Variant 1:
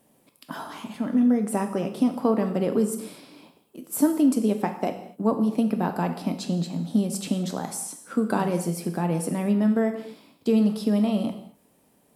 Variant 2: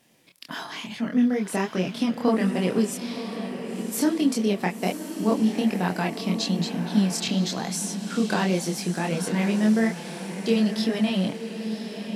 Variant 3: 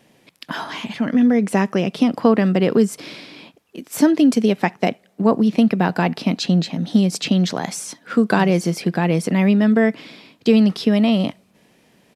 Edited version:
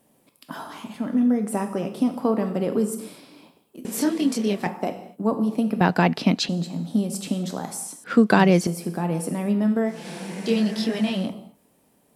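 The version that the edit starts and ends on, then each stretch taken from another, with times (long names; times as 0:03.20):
1
0:03.85–0:04.67: punch in from 2
0:05.81–0:06.49: punch in from 3
0:08.04–0:08.67: punch in from 3
0:09.96–0:11.23: punch in from 2, crossfade 0.24 s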